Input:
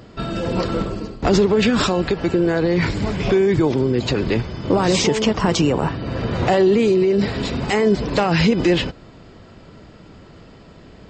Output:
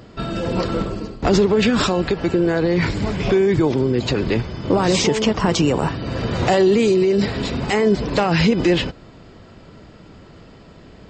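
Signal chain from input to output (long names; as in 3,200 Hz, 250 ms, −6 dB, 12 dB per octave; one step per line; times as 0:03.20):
0:05.67–0:07.26: high-shelf EQ 5,400 Hz +10 dB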